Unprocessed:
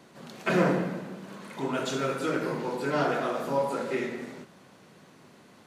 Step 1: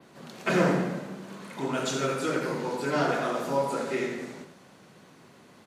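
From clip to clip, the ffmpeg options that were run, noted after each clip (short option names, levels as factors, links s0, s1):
-filter_complex "[0:a]adynamicequalizer=threshold=0.00251:dfrequency=7000:dqfactor=0.86:tfrequency=7000:tqfactor=0.86:attack=5:release=100:ratio=0.375:range=2.5:mode=boostabove:tftype=bell,asplit=2[s0][s1];[s1]adelay=87.46,volume=0.398,highshelf=f=4000:g=-1.97[s2];[s0][s2]amix=inputs=2:normalize=0"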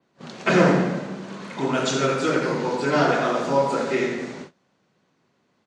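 -af "lowpass=f=7200:w=0.5412,lowpass=f=7200:w=1.3066,agate=range=0.1:threshold=0.00562:ratio=16:detection=peak,volume=2.11"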